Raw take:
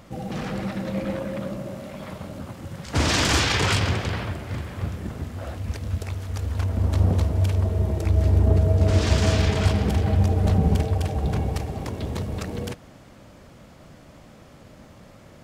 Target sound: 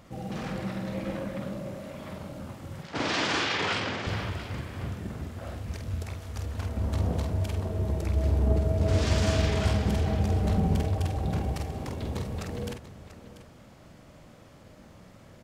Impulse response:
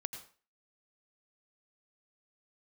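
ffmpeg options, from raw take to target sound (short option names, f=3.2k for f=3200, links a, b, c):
-filter_complex "[0:a]asettb=1/sr,asplit=3[a][b][c];[a]atrim=end=2.834[d];[b]atrim=start=2.83:end=4.07,asetpts=PTS-STARTPTS,afade=t=in:d=0.004:c=qsin,afade=t=out:st=1.236:d=0.004:c=qsin,highpass=220,lowpass=4.3k[e];[c]atrim=start=4.066[f];[d][e]acrossfade=d=0.004:c1=hsin:c2=qsin[g];[g][f]acrossfade=d=0.004:c1=qsin:c2=hsin,aecho=1:1:48|689:0.562|0.211,volume=-5.5dB"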